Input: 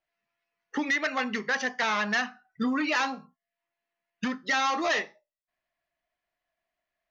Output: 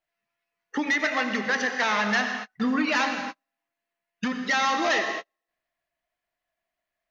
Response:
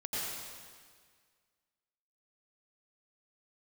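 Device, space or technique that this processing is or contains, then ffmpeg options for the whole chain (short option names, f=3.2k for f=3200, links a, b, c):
keyed gated reverb: -filter_complex "[0:a]asplit=3[a][b][c];[1:a]atrim=start_sample=2205[d];[b][d]afir=irnorm=-1:irlink=0[e];[c]apad=whole_len=313477[f];[e][f]sidechaingate=range=-47dB:threshold=-51dB:ratio=16:detection=peak,volume=-7dB[g];[a][g]amix=inputs=2:normalize=0"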